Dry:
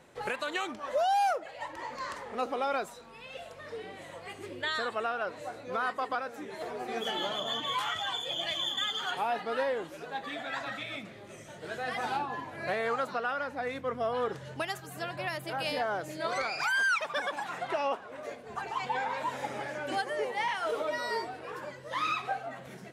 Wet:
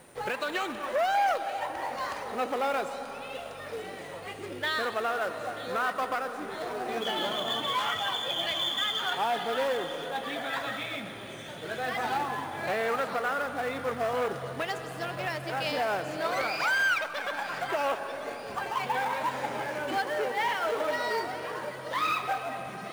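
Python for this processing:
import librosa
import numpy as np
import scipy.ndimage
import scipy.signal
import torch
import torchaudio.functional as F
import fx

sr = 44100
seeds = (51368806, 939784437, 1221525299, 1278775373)

p1 = fx.echo_wet_highpass(x, sr, ms=934, feedback_pct=59, hz=2700.0, wet_db=-11.0)
p2 = p1 + 10.0 ** (-57.0 / 20.0) * np.sin(2.0 * np.pi * 9100.0 * np.arange(len(p1)) / sr)
p3 = fx.air_absorb(p2, sr, metres=53.0)
p4 = fx.quant_companded(p3, sr, bits=4)
p5 = p3 + (p4 * librosa.db_to_amplitude(-5.5))
p6 = fx.rev_freeverb(p5, sr, rt60_s=4.3, hf_ratio=0.6, predelay_ms=75, drr_db=9.0)
y = fx.transformer_sat(p6, sr, knee_hz=1100.0)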